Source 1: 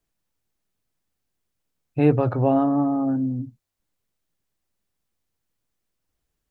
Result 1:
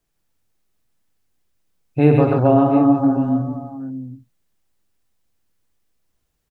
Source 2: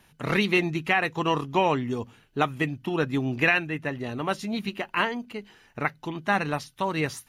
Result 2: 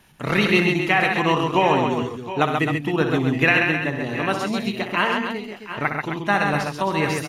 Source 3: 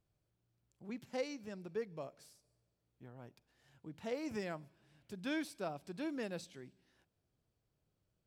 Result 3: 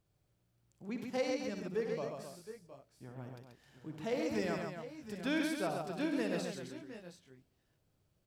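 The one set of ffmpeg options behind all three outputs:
-af "aecho=1:1:62|96|135|263|716|739:0.376|0.237|0.596|0.355|0.2|0.158,volume=3.5dB"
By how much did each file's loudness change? +5.5, +6.0, +5.0 LU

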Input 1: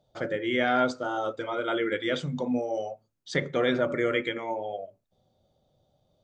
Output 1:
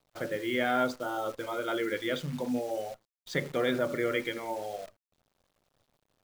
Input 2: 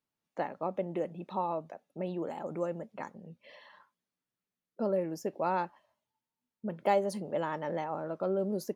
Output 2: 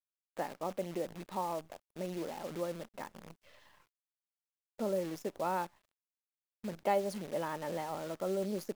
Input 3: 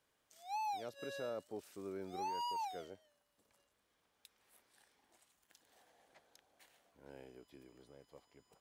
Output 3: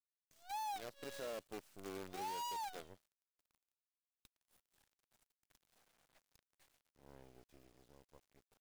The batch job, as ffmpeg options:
-af "acrusher=bits=8:dc=4:mix=0:aa=0.000001,volume=-3.5dB"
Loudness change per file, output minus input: −3.5, −3.5, −2.0 LU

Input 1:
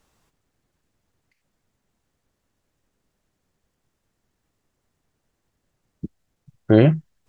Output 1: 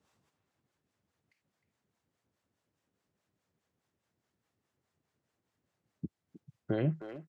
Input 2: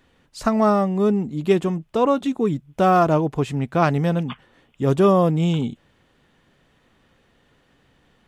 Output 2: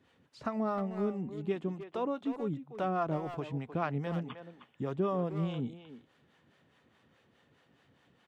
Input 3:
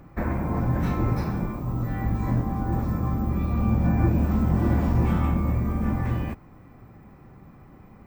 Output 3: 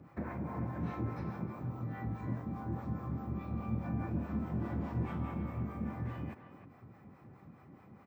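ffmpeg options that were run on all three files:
-filter_complex "[0:a]acrossover=split=4000[link_01][link_02];[link_02]acompressor=threshold=-55dB:ratio=4:attack=1:release=60[link_03];[link_01][link_03]amix=inputs=2:normalize=0,highpass=frequency=81:width=0.5412,highpass=frequency=81:width=1.3066,highshelf=frequency=9700:gain=-9,acompressor=threshold=-38dB:ratio=1.5,acrossover=split=520[link_04][link_05];[link_04]aeval=exprs='val(0)*(1-0.7/2+0.7/2*cos(2*PI*4.8*n/s))':channel_layout=same[link_06];[link_05]aeval=exprs='val(0)*(1-0.7/2-0.7/2*cos(2*PI*4.8*n/s))':channel_layout=same[link_07];[link_06][link_07]amix=inputs=2:normalize=0,asplit=2[link_08][link_09];[link_09]adelay=310,highpass=300,lowpass=3400,asoftclip=type=hard:threshold=-26.5dB,volume=-9dB[link_10];[link_08][link_10]amix=inputs=2:normalize=0,volume=-3.5dB"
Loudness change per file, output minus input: −19.5, −15.0, −13.5 LU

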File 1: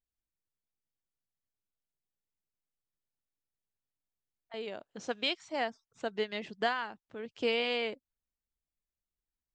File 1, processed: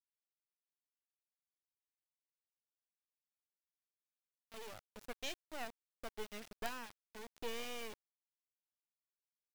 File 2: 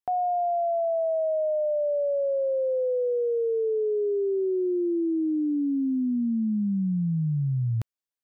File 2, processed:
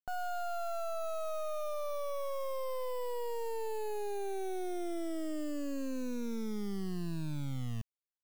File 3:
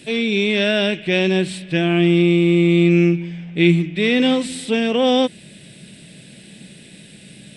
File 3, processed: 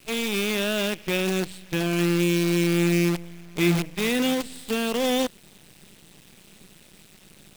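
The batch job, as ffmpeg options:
-af "acrusher=bits=4:dc=4:mix=0:aa=0.000001,volume=-7.5dB"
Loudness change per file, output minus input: −13.0, −12.5, −7.0 LU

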